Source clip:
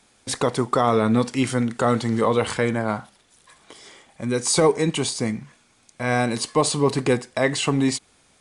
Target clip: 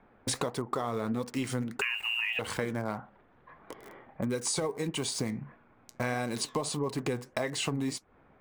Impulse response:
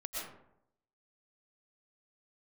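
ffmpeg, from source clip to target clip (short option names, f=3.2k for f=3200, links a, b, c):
-filter_complex "[0:a]asettb=1/sr,asplit=3[a][b][c];[a]atrim=end=1.814[d];[b]atrim=start=1.81:end=2.39,asetpts=PTS-STARTPTS,afade=t=in:d=0.004:c=qsin,afade=t=out:st=0.576:d=0.004:c=qsin,lowpass=f=2.6k:t=q:w=0.5098,lowpass=f=2.6k:t=q:w=0.6013,lowpass=f=2.6k:t=q:w=0.9,lowpass=f=2.6k:t=q:w=2.563,afreqshift=-3000[e];[c]atrim=start=2.386[f];[d][e]acrossfade=d=0.004:c1=hsin:c2=qsin[g];[g][f]acrossfade=d=0.004:c1=qsin:c2=hsin,acrossover=split=1800[h][i];[i]aeval=exprs='val(0)*gte(abs(val(0)),0.0141)':c=same[j];[h][j]amix=inputs=2:normalize=0,flanger=delay=1.8:depth=6.5:regen=76:speed=1.6:shape=sinusoidal,acompressor=threshold=-35dB:ratio=12,volume=6.5dB"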